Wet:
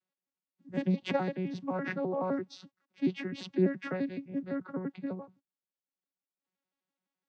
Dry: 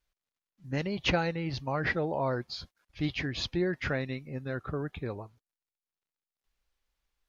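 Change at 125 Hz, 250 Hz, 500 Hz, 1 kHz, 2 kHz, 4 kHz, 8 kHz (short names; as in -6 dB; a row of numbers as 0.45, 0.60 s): -4.0 dB, +2.5 dB, -1.0 dB, -3.5 dB, -8.0 dB, -11.0 dB, n/a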